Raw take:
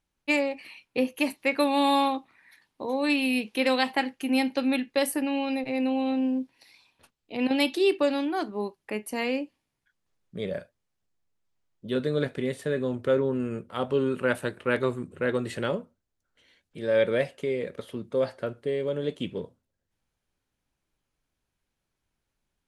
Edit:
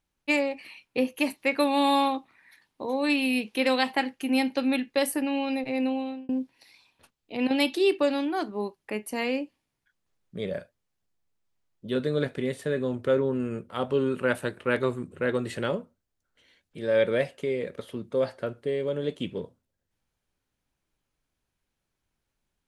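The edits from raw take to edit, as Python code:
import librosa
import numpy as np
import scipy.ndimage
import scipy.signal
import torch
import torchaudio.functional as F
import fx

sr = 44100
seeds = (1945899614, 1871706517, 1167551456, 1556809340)

y = fx.edit(x, sr, fx.fade_out_span(start_s=5.85, length_s=0.44), tone=tone)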